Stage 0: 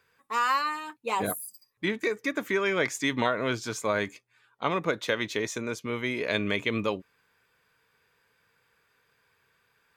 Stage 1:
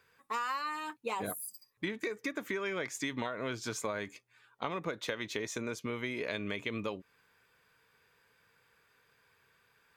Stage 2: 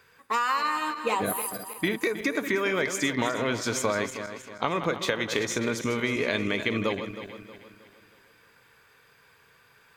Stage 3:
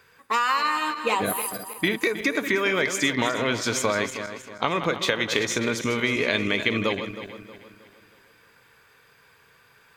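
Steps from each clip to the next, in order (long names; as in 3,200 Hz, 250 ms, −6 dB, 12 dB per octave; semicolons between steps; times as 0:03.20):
downward compressor 6 to 1, threshold −33 dBFS, peak gain reduction 12.5 dB
feedback delay that plays each chunk backwards 158 ms, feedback 63%, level −9 dB; level +9 dB
dynamic equaliser 3,100 Hz, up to +4 dB, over −43 dBFS, Q 0.83; level +2 dB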